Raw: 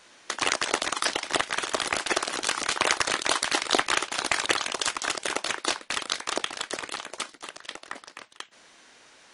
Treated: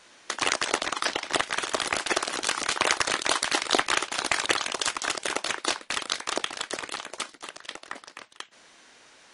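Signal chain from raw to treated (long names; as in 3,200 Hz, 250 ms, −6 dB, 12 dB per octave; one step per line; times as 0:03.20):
0:00.77–0:01.33: high-shelf EQ 8,900 Hz −10.5 dB
gate on every frequency bin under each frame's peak −30 dB strong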